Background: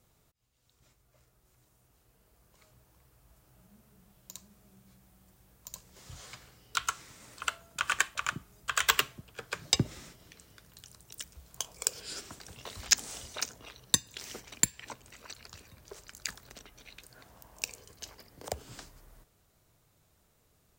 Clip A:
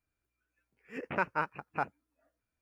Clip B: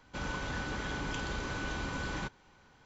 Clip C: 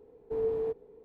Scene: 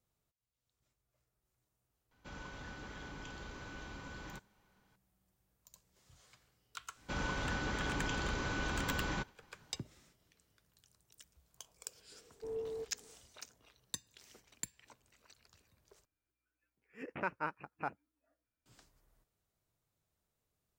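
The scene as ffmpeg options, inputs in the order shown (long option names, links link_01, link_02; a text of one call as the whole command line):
ffmpeg -i bed.wav -i cue0.wav -i cue1.wav -i cue2.wav -filter_complex "[2:a]asplit=2[link_01][link_02];[0:a]volume=-16.5dB[link_03];[link_02]agate=range=-33dB:threshold=-58dB:ratio=3:release=100:detection=peak[link_04];[1:a]equalizer=frequency=310:width=4.9:gain=3.5[link_05];[link_03]asplit=2[link_06][link_07];[link_06]atrim=end=16.054[link_08];[link_05]atrim=end=2.61,asetpts=PTS-STARTPTS,volume=-6.5dB[link_09];[link_07]atrim=start=18.656[link_10];[link_01]atrim=end=2.85,asetpts=PTS-STARTPTS,volume=-11.5dB,afade=type=in:duration=0.004:curve=hsin,afade=type=out:start_time=2.846:duration=0.004:curve=hsin,adelay=2110[link_11];[link_04]atrim=end=2.85,asetpts=PTS-STARTPTS,volume=-0.5dB,afade=type=in:duration=0.004:curve=hsin,afade=type=out:start_time=2.846:duration=0.004:curve=hsin,adelay=6950[link_12];[3:a]atrim=end=1.04,asetpts=PTS-STARTPTS,volume=-10.5dB,afade=type=in:duration=0.004:curve=hsin,afade=type=out:start_time=1.036:duration=0.004:curve=hsin,adelay=12120[link_13];[link_08][link_09]acrossfade=duration=0.004:curve1=hsin:curve2=hsin[link_14];[link_14][link_10]acrossfade=duration=0.004:curve1=hsin:curve2=hsin[link_15];[link_15][link_11][link_12][link_13]amix=inputs=4:normalize=0" out.wav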